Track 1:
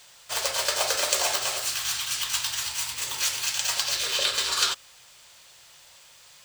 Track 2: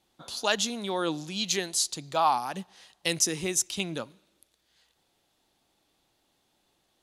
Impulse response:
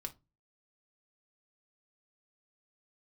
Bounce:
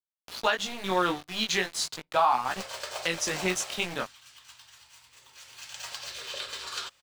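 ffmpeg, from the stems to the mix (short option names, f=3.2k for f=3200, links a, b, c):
-filter_complex "[0:a]adelay=2150,volume=2.5dB,afade=t=out:st=3.7:d=0.35:silence=0.266073,afade=t=in:st=5.4:d=0.46:silence=0.266073[a];[1:a]equalizer=f=1.6k:t=o:w=2.2:g=10.5,aeval=exprs='val(0)*gte(abs(val(0)),0.0316)':c=same,flanger=delay=15.5:depth=7.3:speed=0.39,volume=2dB,asplit=2[b][c];[c]volume=-20dB[d];[2:a]atrim=start_sample=2205[e];[d][e]afir=irnorm=-1:irlink=0[f];[a][b][f]amix=inputs=3:normalize=0,highshelf=f=5.2k:g=-9,alimiter=limit=-13dB:level=0:latency=1:release=312"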